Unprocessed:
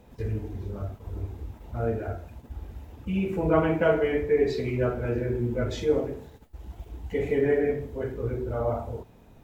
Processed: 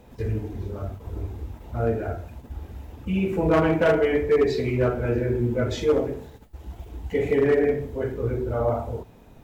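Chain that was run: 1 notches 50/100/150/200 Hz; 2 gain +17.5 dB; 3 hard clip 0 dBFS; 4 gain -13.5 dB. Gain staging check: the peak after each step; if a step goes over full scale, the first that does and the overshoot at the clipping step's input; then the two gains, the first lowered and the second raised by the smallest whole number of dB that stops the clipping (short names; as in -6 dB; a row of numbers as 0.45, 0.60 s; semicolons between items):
-10.0, +7.5, 0.0, -13.5 dBFS; step 2, 7.5 dB; step 2 +9.5 dB, step 4 -5.5 dB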